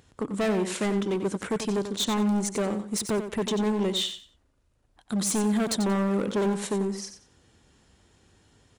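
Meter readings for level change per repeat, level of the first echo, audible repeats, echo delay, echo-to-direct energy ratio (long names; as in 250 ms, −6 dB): −13.0 dB, −9.5 dB, 2, 91 ms, −9.5 dB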